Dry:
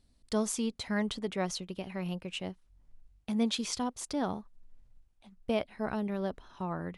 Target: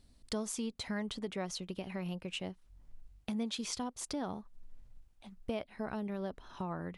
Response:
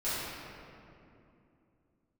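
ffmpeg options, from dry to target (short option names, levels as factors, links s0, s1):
-af "acompressor=threshold=0.00708:ratio=2.5,volume=1.58"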